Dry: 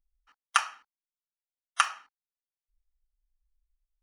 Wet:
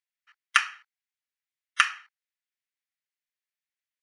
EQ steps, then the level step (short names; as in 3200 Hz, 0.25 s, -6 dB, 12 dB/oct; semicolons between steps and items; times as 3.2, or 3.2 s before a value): resonant high-pass 1900 Hz, resonance Q 2.3; high shelf 7900 Hz -9.5 dB; +2.5 dB